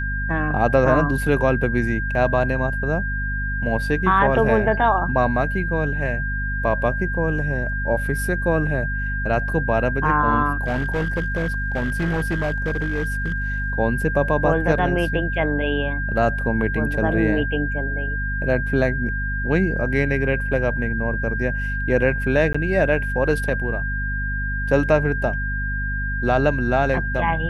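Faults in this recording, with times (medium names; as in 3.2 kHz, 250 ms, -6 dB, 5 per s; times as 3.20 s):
hum 50 Hz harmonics 5 -26 dBFS
whine 1.6 kHz -26 dBFS
10.64–13.70 s: clipped -18 dBFS
22.53–22.55 s: dropout 15 ms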